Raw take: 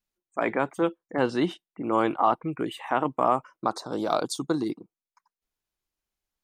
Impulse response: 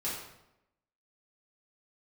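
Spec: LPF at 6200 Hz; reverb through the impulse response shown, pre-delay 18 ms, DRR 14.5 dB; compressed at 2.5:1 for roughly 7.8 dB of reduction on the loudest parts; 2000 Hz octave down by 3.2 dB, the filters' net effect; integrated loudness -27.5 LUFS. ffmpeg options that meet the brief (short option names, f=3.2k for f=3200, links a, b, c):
-filter_complex "[0:a]lowpass=6.2k,equalizer=f=2k:t=o:g=-4.5,acompressor=threshold=-30dB:ratio=2.5,asplit=2[a][b];[1:a]atrim=start_sample=2205,adelay=18[c];[b][c]afir=irnorm=-1:irlink=0,volume=-18.5dB[d];[a][d]amix=inputs=2:normalize=0,volume=6.5dB"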